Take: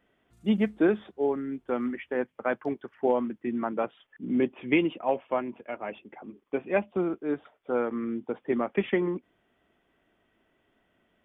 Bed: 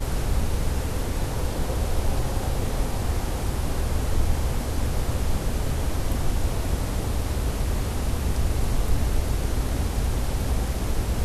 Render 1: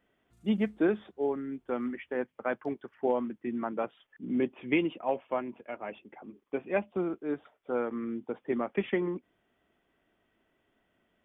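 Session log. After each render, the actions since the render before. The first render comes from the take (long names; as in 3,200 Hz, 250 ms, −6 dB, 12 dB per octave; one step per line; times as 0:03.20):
level −3.5 dB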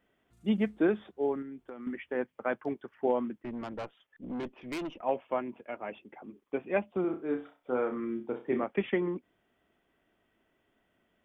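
0:01.42–0:01.87: downward compressor 12 to 1, threshold −39 dBFS
0:03.42–0:05.01: tube saturation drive 33 dB, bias 0.65
0:07.01–0:08.64: flutter between parallel walls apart 5.4 metres, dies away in 0.3 s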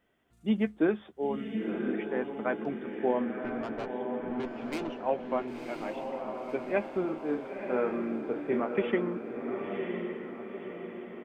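double-tracking delay 13 ms −11.5 dB
on a send: feedback delay with all-pass diffusion 1,015 ms, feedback 51%, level −4.5 dB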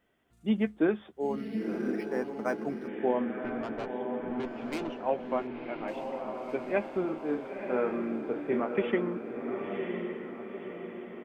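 0:01.20–0:02.88: linearly interpolated sample-rate reduction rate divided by 6×
0:05.47–0:05.88: low-pass filter 3,200 Hz 24 dB per octave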